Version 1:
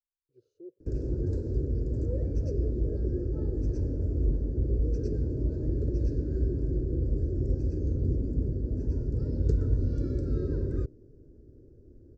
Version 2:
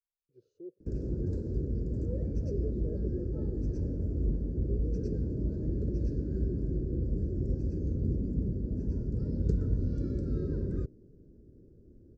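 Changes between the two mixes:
background -4.0 dB; master: add bell 190 Hz +12 dB 0.45 oct

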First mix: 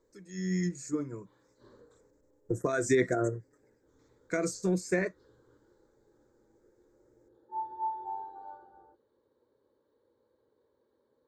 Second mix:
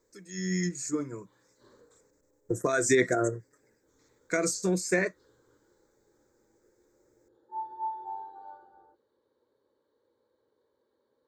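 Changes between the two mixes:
speech +4.0 dB; master: add tilt +1.5 dB/oct

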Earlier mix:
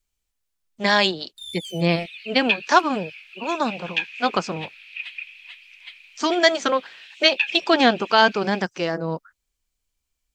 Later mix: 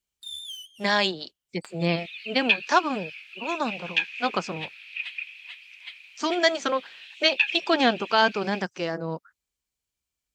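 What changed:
speech -4.5 dB; first sound: entry -1.15 s; master: add HPF 65 Hz

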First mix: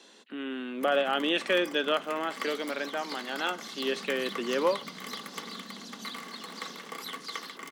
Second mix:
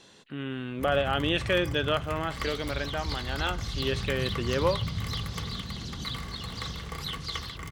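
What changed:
second sound: remove differentiator; master: remove steep high-pass 210 Hz 48 dB/oct

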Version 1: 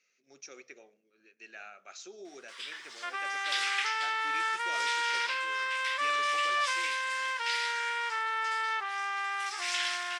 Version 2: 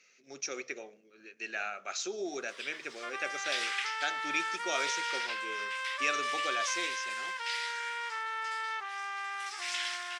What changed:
speech +10.5 dB; second sound -4.5 dB; reverb: off

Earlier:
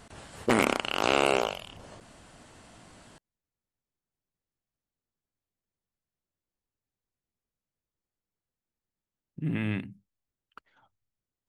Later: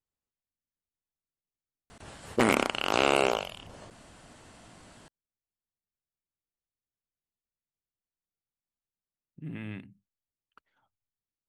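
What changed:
speech -9.0 dB; background: entry +1.90 s

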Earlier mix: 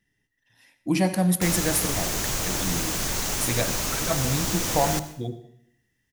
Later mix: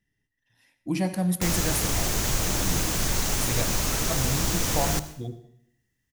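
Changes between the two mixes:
speech -6.0 dB; master: add low shelf 170 Hz +6 dB

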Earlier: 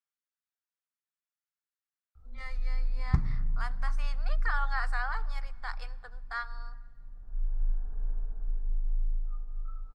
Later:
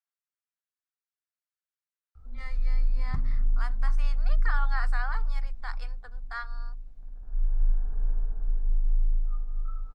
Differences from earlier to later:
first sound +5.5 dB; second sound -6.5 dB; reverb: off

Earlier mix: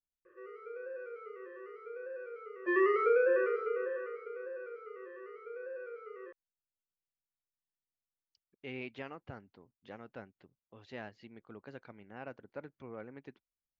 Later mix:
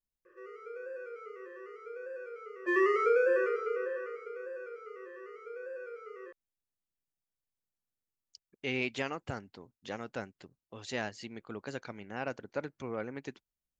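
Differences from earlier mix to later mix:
speech +7.5 dB; master: remove air absorption 270 m

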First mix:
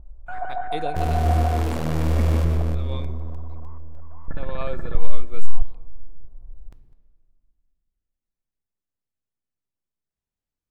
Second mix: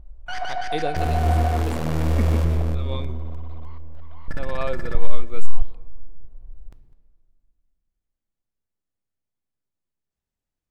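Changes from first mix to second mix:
speech +3.5 dB; first sound: remove LPF 1400 Hz 24 dB/oct

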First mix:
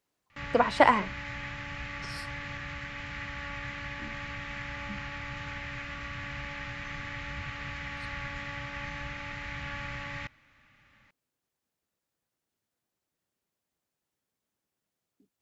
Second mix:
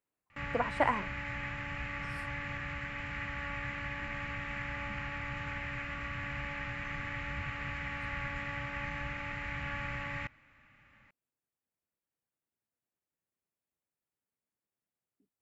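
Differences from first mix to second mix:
speech -8.5 dB; master: add band shelf 4600 Hz -8.5 dB 1.2 oct

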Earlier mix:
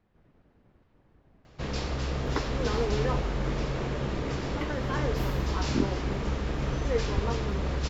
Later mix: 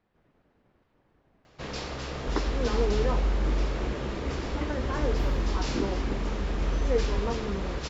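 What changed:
second sound: add tilt -3.5 dB/oct; master: add low shelf 230 Hz -8.5 dB

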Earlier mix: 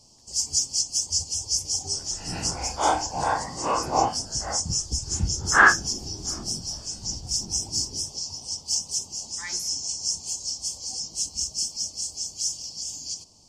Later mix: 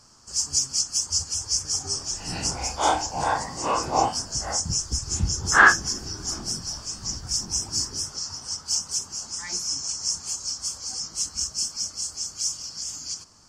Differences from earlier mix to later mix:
speech: add tilt -2.5 dB/oct; first sound: remove Chebyshev band-stop 780–3100 Hz, order 2; second sound: remove Gaussian blur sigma 2.1 samples

